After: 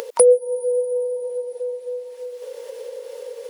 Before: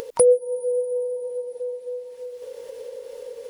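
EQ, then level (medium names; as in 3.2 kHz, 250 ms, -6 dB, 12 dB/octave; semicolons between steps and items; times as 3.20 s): high-pass 420 Hz 12 dB/octave; +4.5 dB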